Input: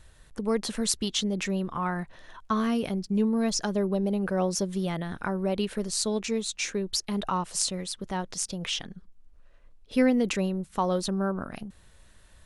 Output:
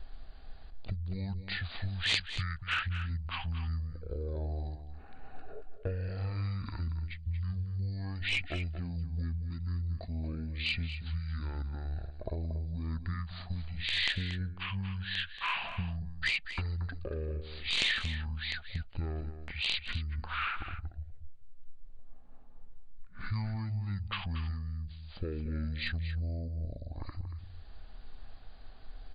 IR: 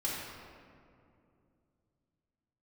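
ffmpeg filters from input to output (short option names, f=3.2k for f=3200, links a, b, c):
-filter_complex "[0:a]bass=f=250:g=12,treble=f=4k:g=-2,acrossover=split=4100[a][b];[a]acompressor=threshold=-35dB:ratio=6[c];[c][b]amix=inputs=2:normalize=0,aeval=exprs='clip(val(0),-1,0.0562)':c=same,asplit=2[d][e];[e]adelay=99.13,volume=-10dB,highshelf=f=4k:g=-2.23[f];[d][f]amix=inputs=2:normalize=0,asetrate=18846,aresample=44100"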